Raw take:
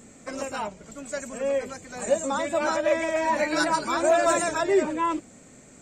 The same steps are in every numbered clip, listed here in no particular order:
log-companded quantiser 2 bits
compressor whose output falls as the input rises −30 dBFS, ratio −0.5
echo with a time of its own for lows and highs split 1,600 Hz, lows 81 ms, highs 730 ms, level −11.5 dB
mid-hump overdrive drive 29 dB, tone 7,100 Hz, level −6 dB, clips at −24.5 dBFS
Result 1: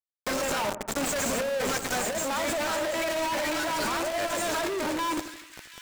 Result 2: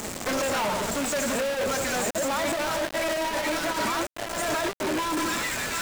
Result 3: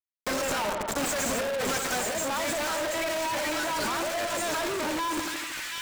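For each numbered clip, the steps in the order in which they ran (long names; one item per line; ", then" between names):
log-companded quantiser, then compressor whose output falls as the input rises, then mid-hump overdrive, then echo with a time of its own for lows and highs
echo with a time of its own for lows and highs, then compressor whose output falls as the input rises, then log-companded quantiser, then mid-hump overdrive
log-companded quantiser, then compressor whose output falls as the input rises, then echo with a time of its own for lows and highs, then mid-hump overdrive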